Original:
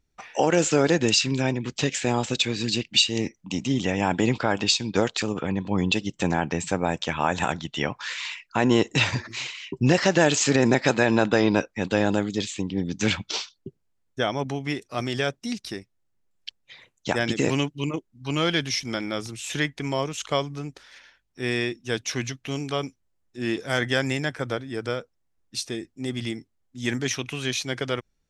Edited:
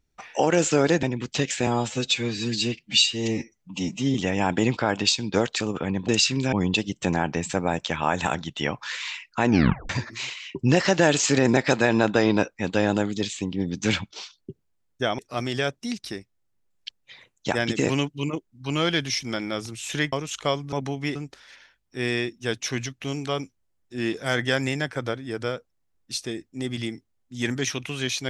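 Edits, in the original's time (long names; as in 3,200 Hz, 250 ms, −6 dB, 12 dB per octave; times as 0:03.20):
0:01.03–0:01.47: move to 0:05.70
0:02.11–0:03.76: time-stretch 1.5×
0:08.65: tape stop 0.42 s
0:13.29–0:13.54: fade in, from −23.5 dB
0:14.36–0:14.79: move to 0:20.59
0:19.73–0:19.99: remove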